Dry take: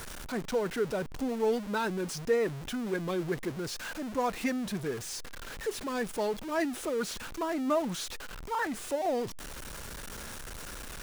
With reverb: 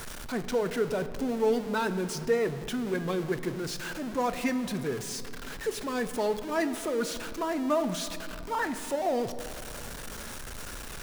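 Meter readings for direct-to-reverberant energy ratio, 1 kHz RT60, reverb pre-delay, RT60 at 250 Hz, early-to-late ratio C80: 10.0 dB, 2.4 s, 5 ms, 3.6 s, 13.0 dB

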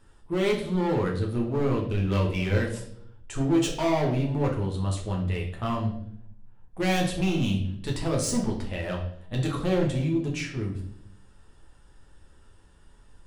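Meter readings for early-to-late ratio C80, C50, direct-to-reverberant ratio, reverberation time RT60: 10.5 dB, 7.0 dB, -1.5 dB, 0.65 s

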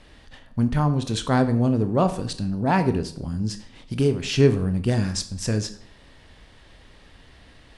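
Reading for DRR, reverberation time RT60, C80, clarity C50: 9.0 dB, 0.60 s, 16.5 dB, 13.0 dB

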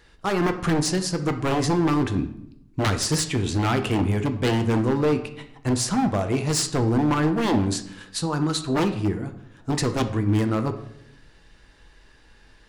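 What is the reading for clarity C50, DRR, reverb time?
11.5 dB, 6.5 dB, 0.75 s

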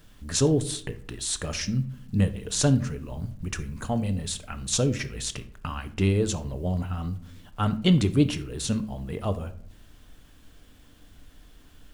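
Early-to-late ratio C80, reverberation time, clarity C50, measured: 19.0 dB, no single decay rate, 15.0 dB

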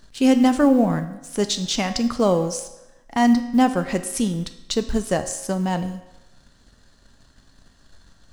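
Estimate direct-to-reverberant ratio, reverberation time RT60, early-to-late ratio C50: 8.5 dB, 1.0 s, 12.0 dB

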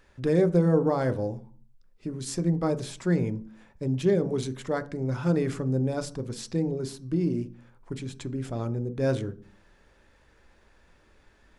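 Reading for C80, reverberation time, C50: 22.5 dB, 0.45 s, 18.5 dB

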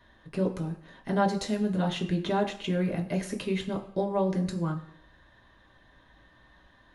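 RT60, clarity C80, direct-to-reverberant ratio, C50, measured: no single decay rate, 14.5 dB, 0.5 dB, 11.5 dB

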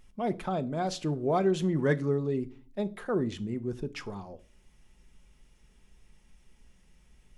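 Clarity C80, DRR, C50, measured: 26.0 dB, 10.0 dB, 21.5 dB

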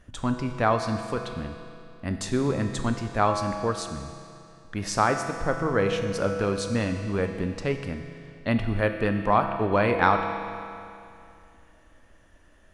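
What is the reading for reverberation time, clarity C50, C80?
2.6 s, 6.0 dB, 7.0 dB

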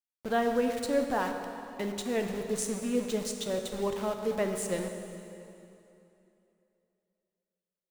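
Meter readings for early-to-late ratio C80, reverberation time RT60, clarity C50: 6.5 dB, 2.9 s, 5.5 dB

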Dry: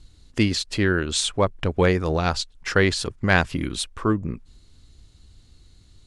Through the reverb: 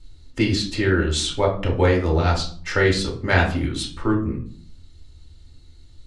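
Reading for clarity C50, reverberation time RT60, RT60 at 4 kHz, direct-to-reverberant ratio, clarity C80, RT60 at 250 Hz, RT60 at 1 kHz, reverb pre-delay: 8.5 dB, 0.50 s, 0.35 s, -2.5 dB, 13.0 dB, 0.70 s, 0.45 s, 3 ms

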